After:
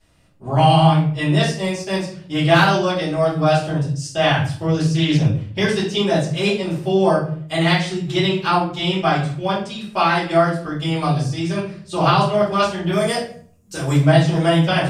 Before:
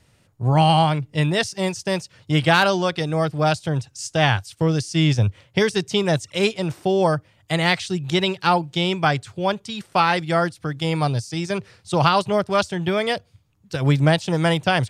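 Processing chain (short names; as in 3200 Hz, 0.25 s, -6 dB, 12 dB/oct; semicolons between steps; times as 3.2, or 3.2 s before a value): 12.92–13.96 resonant high shelf 5100 Hz +11 dB, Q 1.5; shoebox room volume 58 m³, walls mixed, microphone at 2.7 m; 4.74–5.26 Doppler distortion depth 0.2 ms; gain -11 dB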